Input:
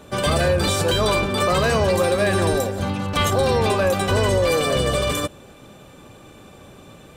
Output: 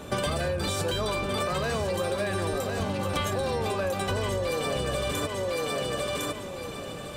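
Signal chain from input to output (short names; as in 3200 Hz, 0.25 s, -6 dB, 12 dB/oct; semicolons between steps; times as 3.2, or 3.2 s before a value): thinning echo 1.056 s, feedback 22%, high-pass 200 Hz, level -9 dB; compressor 10:1, threshold -29 dBFS, peak gain reduction 14.5 dB; gain +3.5 dB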